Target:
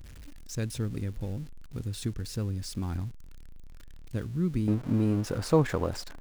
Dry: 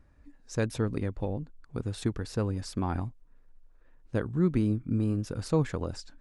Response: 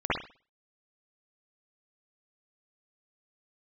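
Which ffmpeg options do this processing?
-af "aeval=exprs='val(0)+0.5*0.01*sgn(val(0))':c=same,asetnsamples=n=441:p=0,asendcmd='4.68 equalizer g 5.5',equalizer=f=810:w=0.47:g=-12"

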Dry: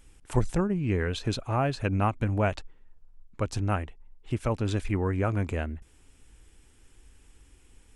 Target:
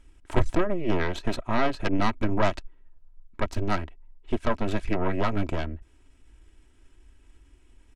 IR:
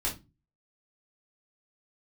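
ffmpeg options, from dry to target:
-af "aeval=exprs='0.251*(cos(1*acos(clip(val(0)/0.251,-1,1)))-cos(1*PI/2))+0.1*(cos(6*acos(clip(val(0)/0.251,-1,1)))-cos(6*PI/2))':c=same,aemphasis=mode=reproduction:type=50kf,aecho=1:1:3.1:0.48,volume=-1.5dB"

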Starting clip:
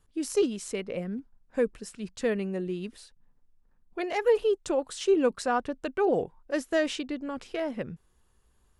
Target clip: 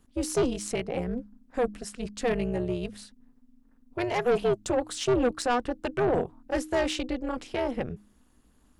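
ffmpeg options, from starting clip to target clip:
-af "tremolo=f=250:d=0.889,bandreject=f=103.5:t=h:w=4,bandreject=f=207:t=h:w=4,bandreject=f=310.5:t=h:w=4,aeval=exprs='(tanh(17.8*val(0)+0.15)-tanh(0.15))/17.8':c=same,volume=7.5dB"

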